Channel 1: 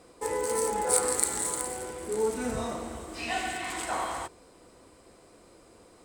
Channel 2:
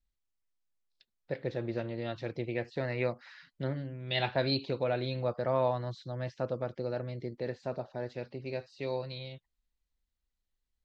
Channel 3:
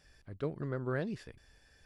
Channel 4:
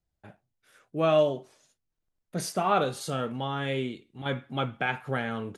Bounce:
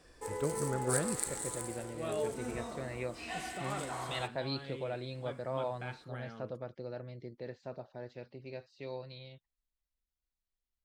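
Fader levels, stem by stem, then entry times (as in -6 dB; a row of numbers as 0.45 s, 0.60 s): -9.5 dB, -7.5 dB, +0.5 dB, -16.5 dB; 0.00 s, 0.00 s, 0.00 s, 1.00 s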